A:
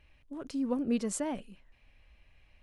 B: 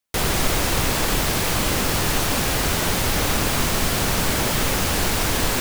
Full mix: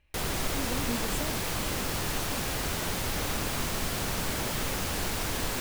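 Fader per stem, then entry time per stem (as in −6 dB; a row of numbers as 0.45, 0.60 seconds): −5.5, −10.0 decibels; 0.00, 0.00 seconds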